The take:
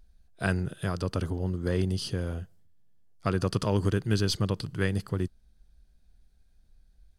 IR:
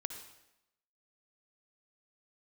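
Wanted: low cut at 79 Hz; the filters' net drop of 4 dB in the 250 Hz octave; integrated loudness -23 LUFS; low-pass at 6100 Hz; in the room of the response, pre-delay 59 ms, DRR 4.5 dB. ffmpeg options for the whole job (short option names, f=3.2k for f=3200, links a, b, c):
-filter_complex "[0:a]highpass=79,lowpass=6.1k,equalizer=f=250:t=o:g=-6,asplit=2[a][b];[1:a]atrim=start_sample=2205,adelay=59[c];[b][c]afir=irnorm=-1:irlink=0,volume=-3.5dB[d];[a][d]amix=inputs=2:normalize=0,volume=8dB"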